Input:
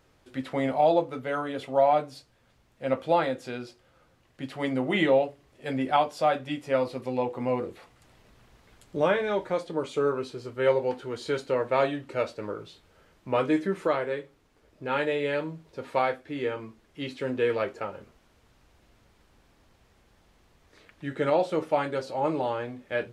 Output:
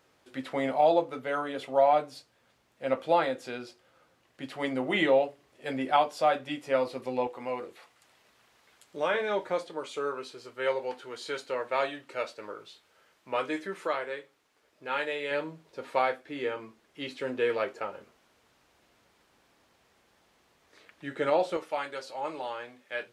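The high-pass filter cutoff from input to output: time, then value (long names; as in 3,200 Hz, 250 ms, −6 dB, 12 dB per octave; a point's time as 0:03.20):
high-pass filter 6 dB per octave
320 Hz
from 0:07.27 940 Hz
from 0:09.14 390 Hz
from 0:09.69 950 Hz
from 0:15.31 390 Hz
from 0:21.57 1,400 Hz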